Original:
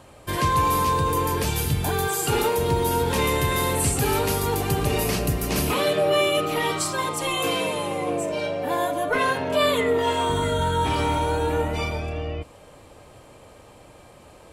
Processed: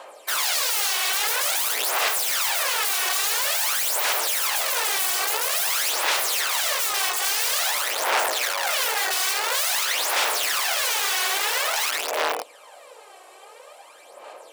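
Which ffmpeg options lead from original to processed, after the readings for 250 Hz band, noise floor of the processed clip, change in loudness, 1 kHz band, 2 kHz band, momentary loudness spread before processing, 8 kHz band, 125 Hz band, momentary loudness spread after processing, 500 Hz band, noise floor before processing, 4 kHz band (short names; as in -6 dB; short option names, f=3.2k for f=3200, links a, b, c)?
-22.0 dB, -48 dBFS, +2.0 dB, -3.0 dB, +4.5 dB, 6 LU, +7.5 dB, under -40 dB, 2 LU, -10.0 dB, -49 dBFS, +6.5 dB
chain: -af "aeval=exprs='(mod(15*val(0)+1,2)-1)/15':c=same,aphaser=in_gain=1:out_gain=1:delay=2.7:decay=0.61:speed=0.49:type=sinusoidal,highpass=f=520:w=0.5412,highpass=f=520:w=1.3066,volume=3dB"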